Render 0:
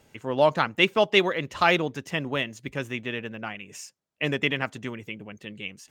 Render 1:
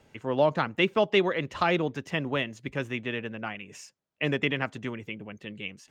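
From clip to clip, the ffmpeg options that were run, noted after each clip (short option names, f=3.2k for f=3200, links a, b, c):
-filter_complex "[0:a]highshelf=f=6.8k:g=-12,acrossover=split=490[a][b];[b]acompressor=threshold=-24dB:ratio=3[c];[a][c]amix=inputs=2:normalize=0"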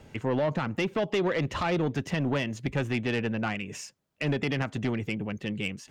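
-af "lowshelf=f=270:g=7,alimiter=limit=-19.5dB:level=0:latency=1:release=153,asoftclip=type=tanh:threshold=-26dB,volume=5.5dB"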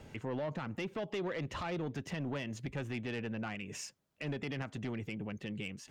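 -af "alimiter=level_in=6dB:limit=-24dB:level=0:latency=1:release=286,volume=-6dB,volume=-1.5dB"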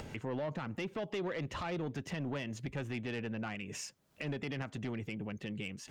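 -af "acompressor=mode=upward:threshold=-39dB:ratio=2.5"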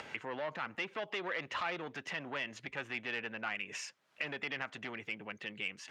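-af "bandpass=f=1.9k:t=q:w=0.83:csg=0,volume=7dB"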